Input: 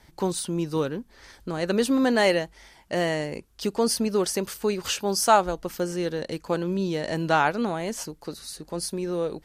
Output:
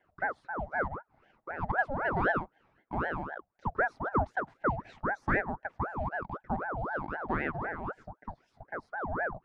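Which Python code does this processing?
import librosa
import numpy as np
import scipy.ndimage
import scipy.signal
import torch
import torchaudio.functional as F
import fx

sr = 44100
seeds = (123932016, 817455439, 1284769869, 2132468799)

y = fx.ladder_bandpass(x, sr, hz=480.0, resonance_pct=45)
y = fx.ring_lfo(y, sr, carrier_hz=740.0, swing_pct=65, hz=3.9)
y = y * 10.0 ** (5.5 / 20.0)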